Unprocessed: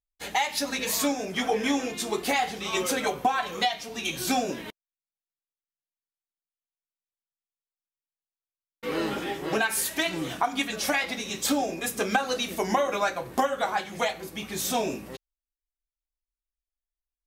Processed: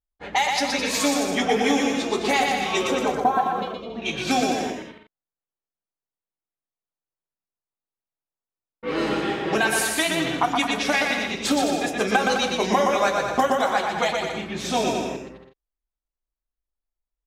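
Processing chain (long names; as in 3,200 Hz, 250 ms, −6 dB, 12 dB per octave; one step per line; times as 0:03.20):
0:03.61–0:03.86: time-frequency box erased 680–2,100 Hz
0:02.87–0:04.02: flat-topped bell 4,200 Hz −13 dB 2.9 octaves
low-pass that shuts in the quiet parts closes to 1,100 Hz, open at −21.5 dBFS
on a send: bouncing-ball delay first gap 120 ms, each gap 0.75×, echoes 5
on the sum: level +3.5 dB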